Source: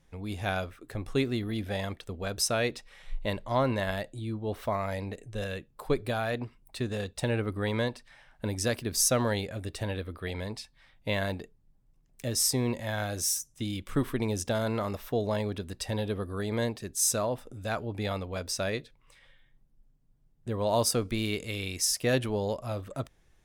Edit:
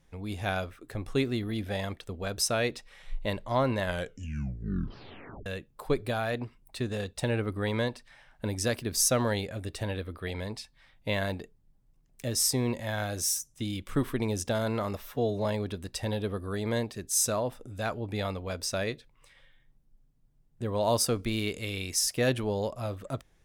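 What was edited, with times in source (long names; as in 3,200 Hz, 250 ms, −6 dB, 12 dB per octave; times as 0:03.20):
0:03.81: tape stop 1.65 s
0:15.03–0:15.31: time-stretch 1.5×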